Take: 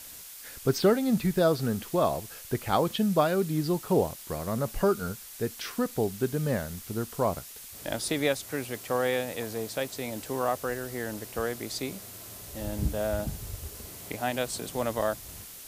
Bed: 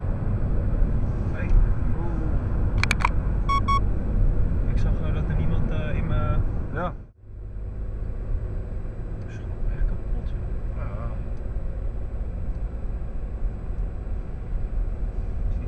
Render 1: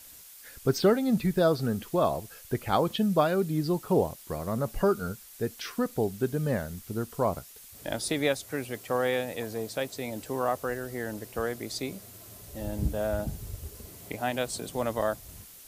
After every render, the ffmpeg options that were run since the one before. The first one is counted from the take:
-af "afftdn=nr=6:nf=-45"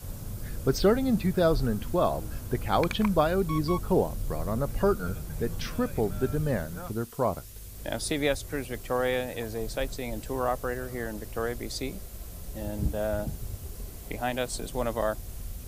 -filter_complex "[1:a]volume=-12.5dB[a];[0:a][a]amix=inputs=2:normalize=0"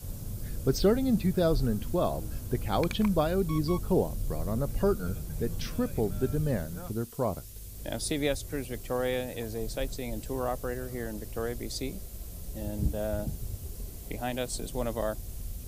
-af "equalizer=f=1.3k:t=o:w=2.2:g=-6.5"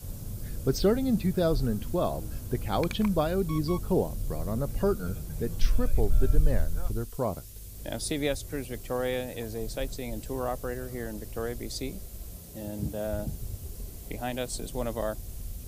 -filter_complex "[0:a]asplit=3[a][b][c];[a]afade=t=out:st=5.6:d=0.02[d];[b]asubboost=boost=10:cutoff=52,afade=t=in:st=5.6:d=0.02,afade=t=out:st=7.16:d=0.02[e];[c]afade=t=in:st=7.16:d=0.02[f];[d][e][f]amix=inputs=3:normalize=0,asettb=1/sr,asplit=3[g][h][i];[g]atrim=end=12.364[j];[h]atrim=start=12.36:end=13.07,asetpts=PTS-STARTPTS,afade=t=in:d=0.004:c=qsin,afade=t=out:st=0.706:d=0.004:c=qsin,highpass=98[k];[i]atrim=start=13.066[l];[j][k]acrossfade=d=0.004:c1=hsin:c2=qsin[m];[m][l]acrossfade=d=0.004:c1=qsin:c2=hsin"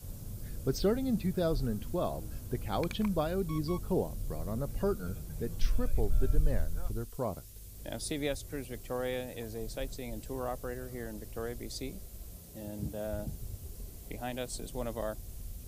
-af "volume=-5dB"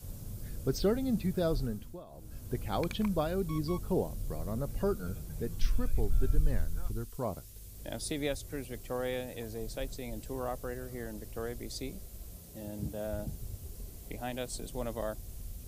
-filter_complex "[0:a]asettb=1/sr,asplit=3[a][b][c];[a]atrim=end=5.484[d];[b]atrim=start=5.48:end=7.23,asetpts=PTS-STARTPTS,afade=t=in:d=0.004:c=qsin,afade=t=out:st=1.746:d=0.004:c=qsin,equalizer=f=590:w=2.3:g=-7[e];[c]atrim=start=7.226[f];[d][e]acrossfade=d=0.004:c1=hsin:c2=qsin[g];[g][f]acrossfade=d=0.004:c1=qsin:c2=hsin,asplit=3[h][i][j];[h]atrim=end=2.05,asetpts=PTS-STARTPTS,afade=t=out:st=1.57:d=0.48:silence=0.0891251[k];[i]atrim=start=2.05:end=2.06,asetpts=PTS-STARTPTS,volume=-21dB[l];[j]atrim=start=2.06,asetpts=PTS-STARTPTS,afade=t=in:d=0.48:silence=0.0891251[m];[k][l][m]concat=n=3:v=0:a=1"

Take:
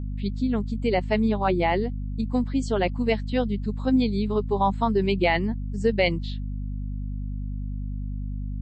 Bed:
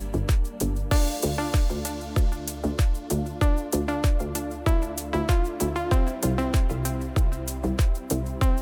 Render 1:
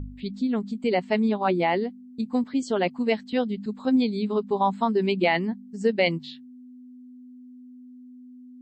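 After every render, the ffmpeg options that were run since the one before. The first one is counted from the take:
-af "bandreject=f=50:t=h:w=4,bandreject=f=100:t=h:w=4,bandreject=f=150:t=h:w=4,bandreject=f=200:t=h:w=4"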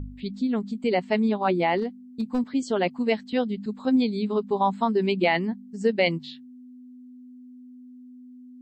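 -filter_complex "[0:a]asplit=3[a][b][c];[a]afade=t=out:st=1.77:d=0.02[d];[b]aeval=exprs='clip(val(0),-1,0.0891)':c=same,afade=t=in:st=1.77:d=0.02,afade=t=out:st=2.38:d=0.02[e];[c]afade=t=in:st=2.38:d=0.02[f];[d][e][f]amix=inputs=3:normalize=0"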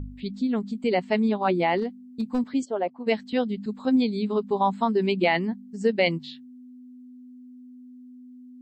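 -filter_complex "[0:a]asplit=3[a][b][c];[a]afade=t=out:st=2.64:d=0.02[d];[b]bandpass=f=660:t=q:w=1.3,afade=t=in:st=2.64:d=0.02,afade=t=out:st=3.06:d=0.02[e];[c]afade=t=in:st=3.06:d=0.02[f];[d][e][f]amix=inputs=3:normalize=0"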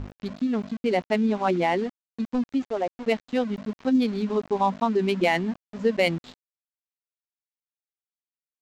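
-af "aresample=16000,aeval=exprs='val(0)*gte(abs(val(0)),0.0158)':c=same,aresample=44100,adynamicsmooth=sensitivity=3.5:basefreq=3.6k"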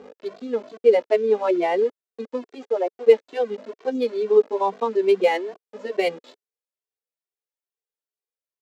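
-filter_complex "[0:a]highpass=f=440:t=q:w=4.9,asplit=2[a][b];[b]adelay=2.1,afreqshift=2.3[c];[a][c]amix=inputs=2:normalize=1"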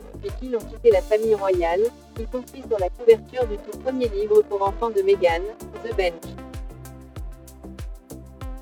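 -filter_complex "[1:a]volume=-13dB[a];[0:a][a]amix=inputs=2:normalize=0"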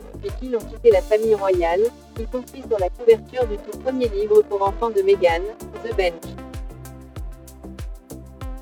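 -af "volume=2dB,alimiter=limit=-3dB:level=0:latency=1"

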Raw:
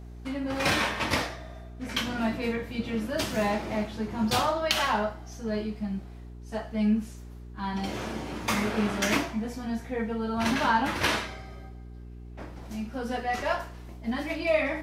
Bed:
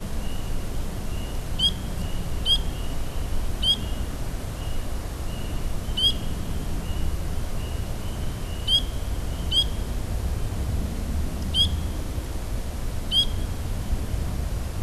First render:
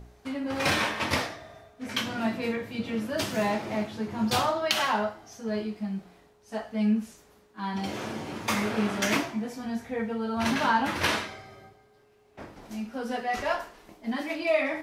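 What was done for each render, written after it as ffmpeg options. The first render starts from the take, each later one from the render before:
-af "bandreject=f=60:t=h:w=4,bandreject=f=120:t=h:w=4,bandreject=f=180:t=h:w=4,bandreject=f=240:t=h:w=4,bandreject=f=300:t=h:w=4,bandreject=f=360:t=h:w=4"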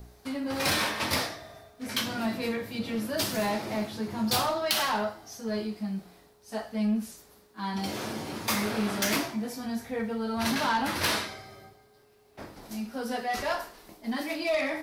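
-filter_complex "[0:a]asoftclip=type=tanh:threshold=-21dB,acrossover=split=390|1600[a][b][c];[c]aexciter=amount=2.7:drive=1:freq=3.9k[d];[a][b][d]amix=inputs=3:normalize=0"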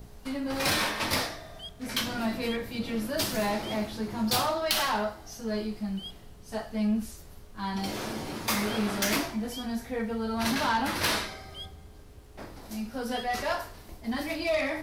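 -filter_complex "[1:a]volume=-21.5dB[a];[0:a][a]amix=inputs=2:normalize=0"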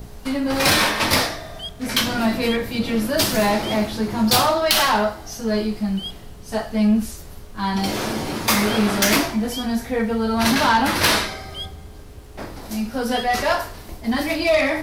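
-af "volume=10dB,alimiter=limit=-1dB:level=0:latency=1"

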